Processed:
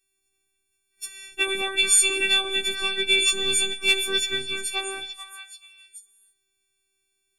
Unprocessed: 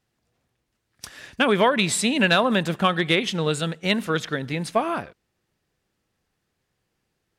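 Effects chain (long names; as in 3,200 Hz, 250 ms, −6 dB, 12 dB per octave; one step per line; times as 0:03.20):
every partial snapped to a pitch grid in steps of 4 semitones
flat-topped bell 730 Hz −12 dB
0:03.22–0:04.42: leveller curve on the samples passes 1
phases set to zero 386 Hz
echo through a band-pass that steps 435 ms, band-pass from 1,400 Hz, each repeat 1.4 octaves, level −6 dB
four-comb reverb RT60 0.77 s, combs from 29 ms, DRR 18 dB
level −3 dB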